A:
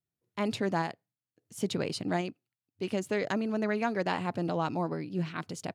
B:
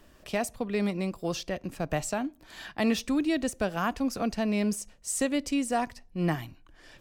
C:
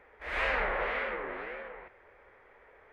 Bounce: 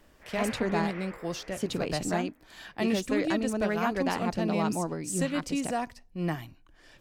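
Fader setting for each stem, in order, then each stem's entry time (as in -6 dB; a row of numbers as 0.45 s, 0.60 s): 0.0 dB, -3.0 dB, -11.0 dB; 0.00 s, 0.00 s, 0.00 s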